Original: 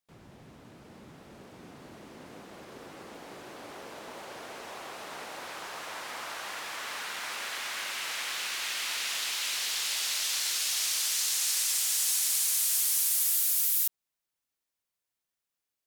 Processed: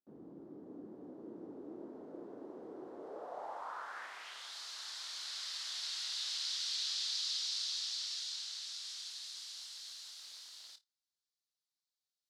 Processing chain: one-sided wavefolder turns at -20 dBFS; low-pass that closes with the level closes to 2.3 kHz, closed at -26 dBFS; peaking EQ 1.9 kHz -12.5 dB 1 oct; on a send: flutter echo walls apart 6.1 m, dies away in 0.21 s; on the sum: tape speed +29%; band-pass sweep 320 Hz -> 4.2 kHz, 2.93–4.57 s; trim +5.5 dB

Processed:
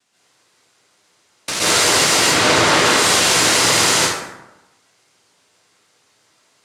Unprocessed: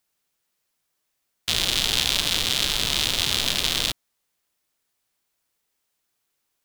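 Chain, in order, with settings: peaking EQ 1.3 kHz +9.5 dB 2.1 oct; noise-vocoded speech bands 1; 2.19–2.86 s: low-pass 2.4 kHz 6 dB/octave; peak limiter -17.5 dBFS, peak gain reduction 10 dB; plate-style reverb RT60 1 s, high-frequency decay 0.55×, pre-delay 110 ms, DRR -8.5 dB; trim +5 dB

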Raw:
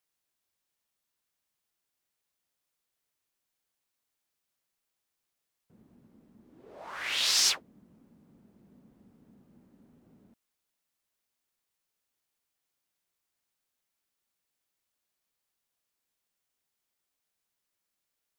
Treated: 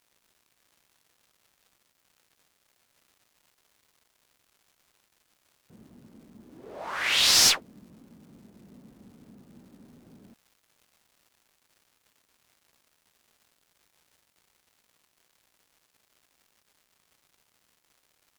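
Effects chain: crackle 320 per s -59 dBFS; one-sided clip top -26 dBFS; trim +7.5 dB

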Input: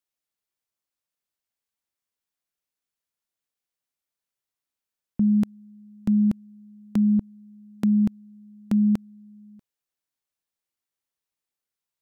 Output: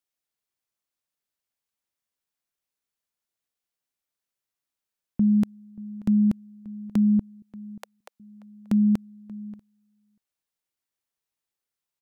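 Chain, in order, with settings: 7.42–8.20 s: steep high-pass 510 Hz 48 dB/octave; echo from a far wall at 100 m, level -20 dB

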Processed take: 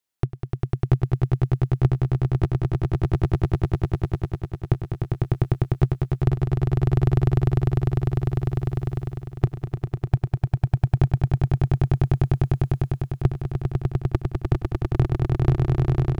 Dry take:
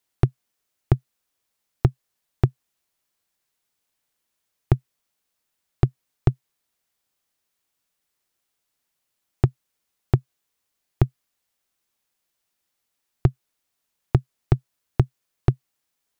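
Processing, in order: echo with a slow build-up 100 ms, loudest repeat 8, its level -4 dB; level rider; trim -6 dB

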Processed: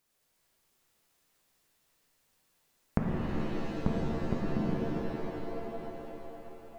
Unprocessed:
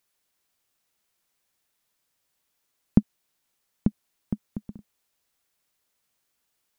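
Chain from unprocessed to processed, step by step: tilt shelf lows +3 dB; compression, threshold -27 dBFS, peak gain reduction 17.5 dB; pitch-shifted reverb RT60 3.6 s, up +7 st, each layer -2 dB, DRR -3 dB

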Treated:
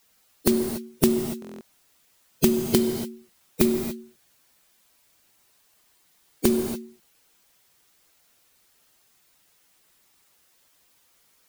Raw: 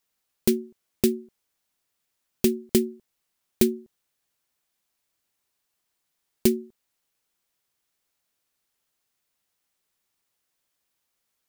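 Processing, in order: coarse spectral quantiser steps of 15 dB; compression 4:1, threshold -32 dBFS, peak gain reduction 14.5 dB; gated-style reverb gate 310 ms flat, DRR 7 dB; loudness maximiser +16 dB; buffer glitch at 1.40 s, samples 1024, times 8; trim -1 dB

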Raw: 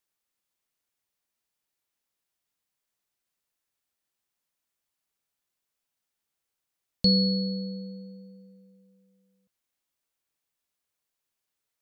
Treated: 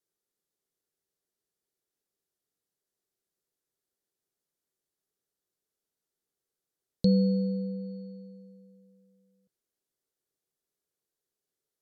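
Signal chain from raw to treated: low-pass that closes with the level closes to 2 kHz, closed at -32 dBFS; fifteen-band graphic EQ 160 Hz +5 dB, 400 Hz +12 dB, 1 kHz -5 dB, 2.5 kHz -9 dB; trim -3.5 dB

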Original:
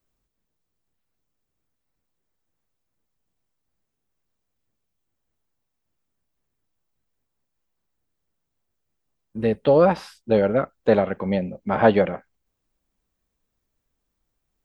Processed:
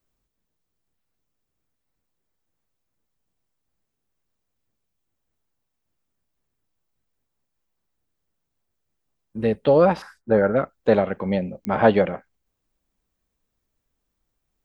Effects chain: 10.02–10.56 s: resonant high shelf 2.2 kHz -10 dB, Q 3; clicks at 11.65 s, -15 dBFS

